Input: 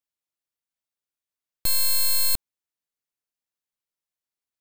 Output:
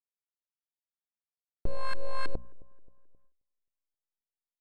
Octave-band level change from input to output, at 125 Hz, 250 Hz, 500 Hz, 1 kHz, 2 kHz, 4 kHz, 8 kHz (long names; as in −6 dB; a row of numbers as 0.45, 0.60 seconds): +0.5, +2.0, +6.0, +4.0, −4.5, −23.0, −37.5 decibels